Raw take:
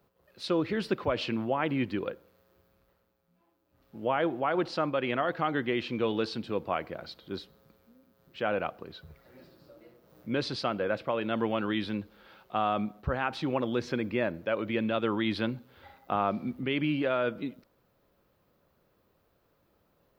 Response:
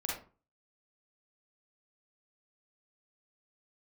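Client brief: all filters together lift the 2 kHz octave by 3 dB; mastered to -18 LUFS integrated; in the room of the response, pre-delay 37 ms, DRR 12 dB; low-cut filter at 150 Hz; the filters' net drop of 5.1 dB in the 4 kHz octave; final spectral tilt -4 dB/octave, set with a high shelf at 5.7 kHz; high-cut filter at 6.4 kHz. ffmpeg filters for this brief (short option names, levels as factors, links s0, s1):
-filter_complex "[0:a]highpass=150,lowpass=6400,equalizer=f=2000:t=o:g=6.5,equalizer=f=4000:t=o:g=-7.5,highshelf=f=5700:g=-5,asplit=2[s0][s1];[1:a]atrim=start_sample=2205,adelay=37[s2];[s1][s2]afir=irnorm=-1:irlink=0,volume=0.168[s3];[s0][s3]amix=inputs=2:normalize=0,volume=4.22"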